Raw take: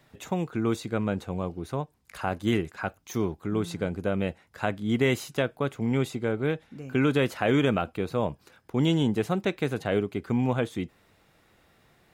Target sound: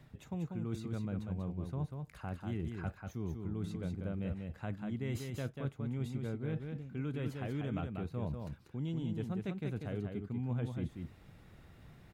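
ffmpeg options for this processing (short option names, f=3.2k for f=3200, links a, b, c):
-af "bass=f=250:g=13,treble=f=4k:g=-3,areverse,acompressor=threshold=-34dB:ratio=6,areverse,aecho=1:1:191:0.562,volume=-3dB"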